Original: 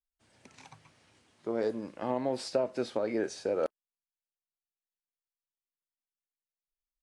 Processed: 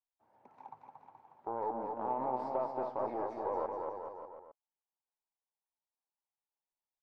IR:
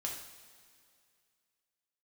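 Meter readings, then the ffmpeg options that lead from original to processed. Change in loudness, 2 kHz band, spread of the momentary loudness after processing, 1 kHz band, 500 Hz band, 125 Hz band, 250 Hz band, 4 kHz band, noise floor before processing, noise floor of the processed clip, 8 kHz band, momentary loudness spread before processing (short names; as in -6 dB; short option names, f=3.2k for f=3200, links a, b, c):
-4.5 dB, -11.5 dB, 19 LU, +6.0 dB, -6.0 dB, -8.5 dB, -9.0 dB, under -25 dB, under -85 dBFS, under -85 dBFS, under -30 dB, 5 LU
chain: -filter_complex "[0:a]aeval=exprs='0.158*(cos(1*acos(clip(val(0)/0.158,-1,1)))-cos(1*PI/2))+0.0224*(cos(6*acos(clip(val(0)/0.158,-1,1)))-cos(6*PI/2))+0.00562*(cos(7*acos(clip(val(0)/0.158,-1,1)))-cos(7*PI/2))':c=same,alimiter=level_in=2dB:limit=-24dB:level=0:latency=1:release=16,volume=-2dB,lowpass=f=880:t=q:w=4.6,aemphasis=mode=production:type=bsi,asplit=2[a][b];[b]aecho=0:1:230|425.5|591.7|732.9|853:0.631|0.398|0.251|0.158|0.1[c];[a][c]amix=inputs=2:normalize=0,volume=-3dB"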